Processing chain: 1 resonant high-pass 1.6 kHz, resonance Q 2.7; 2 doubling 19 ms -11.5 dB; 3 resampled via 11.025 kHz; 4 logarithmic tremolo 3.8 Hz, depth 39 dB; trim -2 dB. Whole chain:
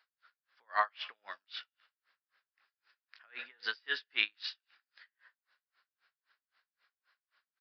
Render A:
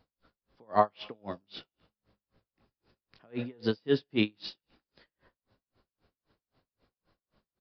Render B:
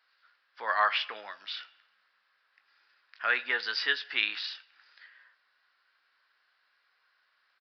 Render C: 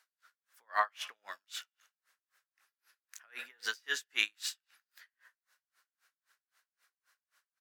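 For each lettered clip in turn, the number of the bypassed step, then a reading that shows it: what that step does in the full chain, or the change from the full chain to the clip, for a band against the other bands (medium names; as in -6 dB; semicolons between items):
1, 250 Hz band +28.5 dB; 4, momentary loudness spread change -2 LU; 3, momentary loudness spread change +3 LU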